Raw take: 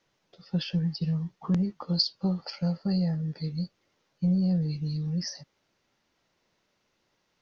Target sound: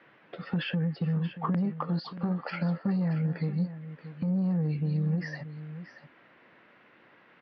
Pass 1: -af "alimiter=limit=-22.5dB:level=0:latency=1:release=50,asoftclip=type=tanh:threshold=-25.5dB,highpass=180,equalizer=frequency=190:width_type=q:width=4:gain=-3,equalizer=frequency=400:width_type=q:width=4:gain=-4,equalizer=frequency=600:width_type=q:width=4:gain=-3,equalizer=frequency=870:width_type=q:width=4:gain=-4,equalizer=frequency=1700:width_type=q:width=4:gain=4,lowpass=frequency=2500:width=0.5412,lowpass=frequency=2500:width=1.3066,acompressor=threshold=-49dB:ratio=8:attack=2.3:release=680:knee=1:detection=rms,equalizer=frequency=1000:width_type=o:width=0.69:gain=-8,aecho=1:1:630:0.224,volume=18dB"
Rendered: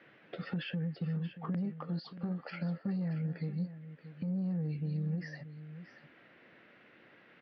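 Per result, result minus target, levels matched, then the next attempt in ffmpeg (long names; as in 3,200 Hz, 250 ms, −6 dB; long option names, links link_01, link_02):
downward compressor: peak gain reduction +6.5 dB; 1,000 Hz band −4.5 dB
-af "alimiter=limit=-22.5dB:level=0:latency=1:release=50,asoftclip=type=tanh:threshold=-25.5dB,highpass=180,equalizer=frequency=190:width_type=q:width=4:gain=-3,equalizer=frequency=400:width_type=q:width=4:gain=-4,equalizer=frequency=600:width_type=q:width=4:gain=-3,equalizer=frequency=870:width_type=q:width=4:gain=-4,equalizer=frequency=1700:width_type=q:width=4:gain=4,lowpass=frequency=2500:width=0.5412,lowpass=frequency=2500:width=1.3066,acompressor=threshold=-41.5dB:ratio=8:attack=2.3:release=680:knee=1:detection=rms,equalizer=frequency=1000:width_type=o:width=0.69:gain=-8,aecho=1:1:630:0.224,volume=18dB"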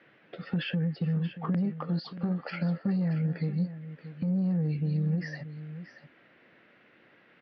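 1,000 Hz band −5.0 dB
-af "alimiter=limit=-22.5dB:level=0:latency=1:release=50,asoftclip=type=tanh:threshold=-25.5dB,highpass=180,equalizer=frequency=190:width_type=q:width=4:gain=-3,equalizer=frequency=400:width_type=q:width=4:gain=-4,equalizer=frequency=600:width_type=q:width=4:gain=-3,equalizer=frequency=870:width_type=q:width=4:gain=-4,equalizer=frequency=1700:width_type=q:width=4:gain=4,lowpass=frequency=2500:width=0.5412,lowpass=frequency=2500:width=1.3066,acompressor=threshold=-41.5dB:ratio=8:attack=2.3:release=680:knee=1:detection=rms,aecho=1:1:630:0.224,volume=18dB"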